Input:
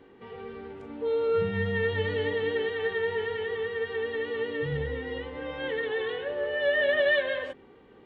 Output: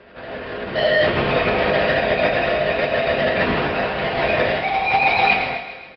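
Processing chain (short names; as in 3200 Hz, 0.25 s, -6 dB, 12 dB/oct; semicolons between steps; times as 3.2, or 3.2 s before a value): half-waves squared off; LPC vocoder at 8 kHz whisper; in parallel at +2.5 dB: compressor, threshold -32 dBFS, peak gain reduction 15.5 dB; on the sum: bell 610 Hz -4.5 dB 0.44 oct; thinning echo 0.18 s, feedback 65%, high-pass 420 Hz, level -11.5 dB; on a send at -1 dB: reverb RT60 0.40 s, pre-delay 8 ms; on the sum: speed mistake 33 rpm record played at 45 rpm; HPF 52 Hz; AGC gain up to 8 dB; LPF 2600 Hz 12 dB/oct; low shelf 390 Hz -10 dB; doubler 36 ms -12 dB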